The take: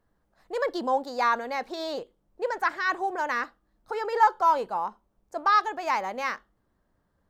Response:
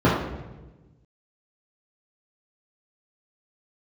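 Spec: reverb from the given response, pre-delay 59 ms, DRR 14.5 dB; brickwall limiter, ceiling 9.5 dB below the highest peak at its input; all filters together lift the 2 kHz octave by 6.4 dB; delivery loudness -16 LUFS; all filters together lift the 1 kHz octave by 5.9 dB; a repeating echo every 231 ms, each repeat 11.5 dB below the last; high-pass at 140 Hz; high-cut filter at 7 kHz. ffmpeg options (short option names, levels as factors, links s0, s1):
-filter_complex "[0:a]highpass=140,lowpass=7000,equalizer=f=1000:t=o:g=5.5,equalizer=f=2000:t=o:g=6,alimiter=limit=0.251:level=0:latency=1,aecho=1:1:231|462|693:0.266|0.0718|0.0194,asplit=2[s0][s1];[1:a]atrim=start_sample=2205,adelay=59[s2];[s1][s2]afir=irnorm=-1:irlink=0,volume=0.0168[s3];[s0][s3]amix=inputs=2:normalize=0,volume=2.51"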